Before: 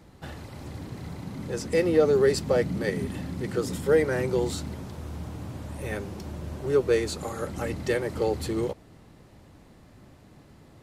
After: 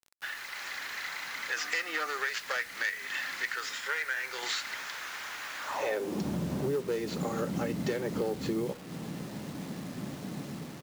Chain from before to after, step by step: tracing distortion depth 0.21 ms; resampled via 16 kHz; on a send at -15.5 dB: reverberation, pre-delay 3 ms; on the sum: level rider gain up to 8 dB; in parallel at -10 dB: wavefolder -12 dBFS; on the sum: high-pass sweep 1.7 kHz -> 180 Hz, 5.58–6.24 s; 1.56–2.18 s: small resonant body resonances 300/730/1200 Hz, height 11 dB, ringing for 65 ms; 3.54–4.43 s: feedback comb 130 Hz, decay 0.49 s, harmonics all, mix 50%; compression 10:1, threshold -29 dBFS, peak gain reduction 21 dB; bit crusher 8-bit

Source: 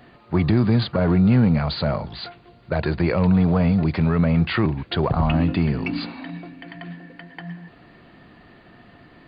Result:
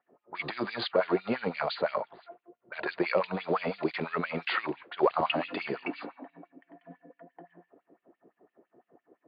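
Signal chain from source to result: level-controlled noise filter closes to 380 Hz, open at -14 dBFS; 6.80–7.31 s: comb 4.1 ms, depth 75%; LFO high-pass sine 5.9 Hz 370–3100 Hz; trim -5 dB

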